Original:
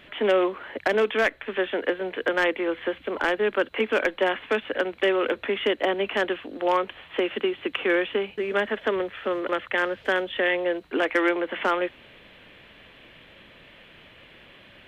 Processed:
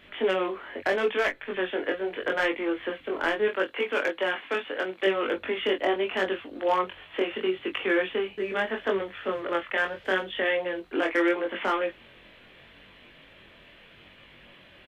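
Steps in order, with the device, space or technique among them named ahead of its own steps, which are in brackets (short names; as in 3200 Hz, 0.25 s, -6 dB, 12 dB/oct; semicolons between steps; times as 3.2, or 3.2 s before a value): double-tracked vocal (doubler 21 ms -8 dB; chorus 0.77 Hz, delay 20 ms, depth 4.1 ms); 3.48–5.07 HPF 300 Hz 6 dB/oct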